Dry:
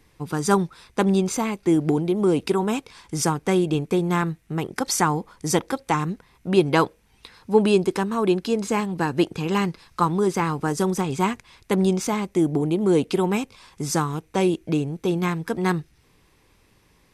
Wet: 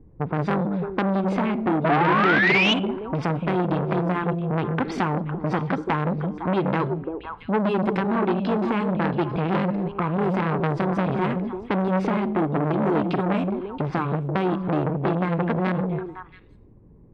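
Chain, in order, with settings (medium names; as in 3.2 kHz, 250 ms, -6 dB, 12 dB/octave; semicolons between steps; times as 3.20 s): level-controlled noise filter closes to 390 Hz, open at -18 dBFS; dynamic bell 540 Hz, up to -4 dB, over -32 dBFS, Q 1.2; in parallel at 0 dB: peak limiter -14.5 dBFS, peak gain reduction 9 dB; on the sum: compression 4:1, threshold -21 dBFS, peak gain reduction 10 dB; distance through air 430 m; on a send: repeats whose band climbs or falls 169 ms, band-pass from 160 Hz, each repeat 1.4 oct, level -2 dB; on the sum: painted sound rise, 1.84–2.74 s, 620–3100 Hz -21 dBFS; Schroeder reverb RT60 0.47 s, combs from 33 ms, DRR 17.5 dB; transformer saturation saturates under 1.4 kHz; trim +4.5 dB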